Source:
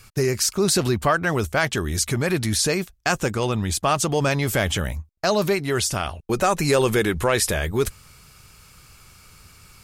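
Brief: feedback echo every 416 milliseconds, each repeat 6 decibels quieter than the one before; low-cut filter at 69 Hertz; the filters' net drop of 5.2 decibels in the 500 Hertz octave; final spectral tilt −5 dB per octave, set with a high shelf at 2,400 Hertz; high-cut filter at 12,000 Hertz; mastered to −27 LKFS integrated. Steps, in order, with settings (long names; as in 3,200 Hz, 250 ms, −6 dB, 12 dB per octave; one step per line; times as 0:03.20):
high-pass filter 69 Hz
low-pass filter 12,000 Hz
parametric band 500 Hz −6.5 dB
high-shelf EQ 2,400 Hz −8.5 dB
repeating echo 416 ms, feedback 50%, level −6 dB
level −2 dB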